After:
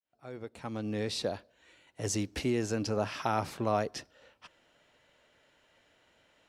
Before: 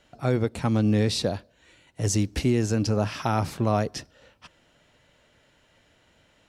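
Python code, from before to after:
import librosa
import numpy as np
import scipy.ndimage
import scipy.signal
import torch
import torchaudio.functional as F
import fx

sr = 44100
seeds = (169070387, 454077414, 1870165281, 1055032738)

y = fx.fade_in_head(x, sr, length_s=1.52)
y = fx.bass_treble(y, sr, bass_db=-9, treble_db=-3)
y = y * librosa.db_to_amplitude(-3.5)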